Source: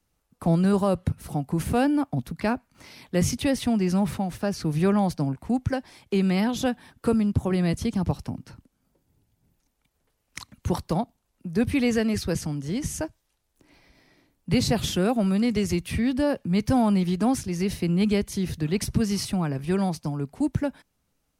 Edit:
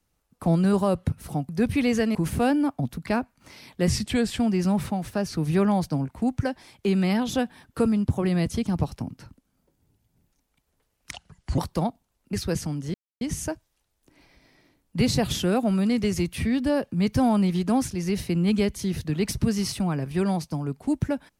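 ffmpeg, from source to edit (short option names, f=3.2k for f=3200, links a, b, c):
-filter_complex "[0:a]asplit=9[a][b][c][d][e][f][g][h][i];[a]atrim=end=1.492[j];[b]atrim=start=11.468:end=12.132[k];[c]atrim=start=1.488:end=3.234[l];[d]atrim=start=3.23:end=3.67,asetpts=PTS-STARTPTS,asetrate=38367,aresample=44100,atrim=end_sample=22303,asetpts=PTS-STARTPTS[m];[e]atrim=start=3.666:end=10.394[n];[f]atrim=start=10.39:end=10.72,asetpts=PTS-STARTPTS,asetrate=31311,aresample=44100,atrim=end_sample=20497,asetpts=PTS-STARTPTS[o];[g]atrim=start=10.716:end=11.472[p];[h]atrim=start=12.128:end=12.74,asetpts=PTS-STARTPTS,afade=t=out:st=0.608:d=0.004:c=hsin,apad=pad_dur=0.27[q];[i]atrim=start=12.74,asetpts=PTS-STARTPTS,afade=t=in:d=0.004:c=hsin[r];[j][k]acrossfade=d=0.004:c1=hsin:c2=hsin[s];[s][l]acrossfade=d=0.004:c1=hsin:c2=hsin[t];[t][m]acrossfade=d=0.004:c1=hsin:c2=hsin[u];[u][n]acrossfade=d=0.004:c1=hsin:c2=hsin[v];[v][o]acrossfade=d=0.004:c1=hsin:c2=hsin[w];[w][p]acrossfade=d=0.004:c1=hsin:c2=hsin[x];[q][r]concat=n=2:v=0:a=1[y];[x][y]acrossfade=d=0.004:c1=hsin:c2=hsin"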